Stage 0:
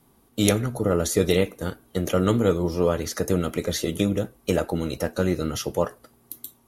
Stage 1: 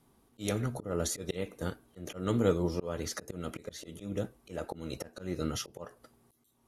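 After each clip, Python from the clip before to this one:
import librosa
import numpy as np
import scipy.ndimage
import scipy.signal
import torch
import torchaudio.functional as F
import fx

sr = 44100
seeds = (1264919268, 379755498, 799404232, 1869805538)

y = scipy.signal.sosfilt(scipy.signal.butter(2, 11000.0, 'lowpass', fs=sr, output='sos'), x)
y = fx.auto_swell(y, sr, attack_ms=252.0)
y = F.gain(torch.from_numpy(y), -6.0).numpy()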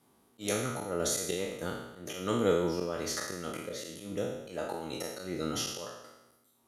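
y = fx.spec_trails(x, sr, decay_s=0.95)
y = fx.highpass(y, sr, hz=230.0, slope=6)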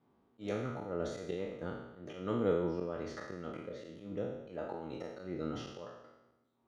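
y = fx.spacing_loss(x, sr, db_at_10k=33)
y = F.gain(torch.from_numpy(y), -2.5).numpy()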